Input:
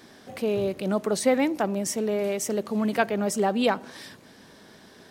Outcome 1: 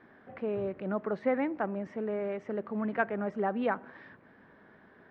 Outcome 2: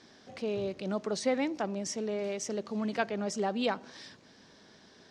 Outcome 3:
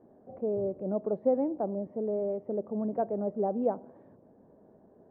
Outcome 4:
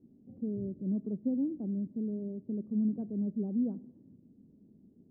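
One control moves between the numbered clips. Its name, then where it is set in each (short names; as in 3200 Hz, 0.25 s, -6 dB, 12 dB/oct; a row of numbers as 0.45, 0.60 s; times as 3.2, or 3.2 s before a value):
ladder low-pass, frequency: 2100, 7000, 790, 310 Hz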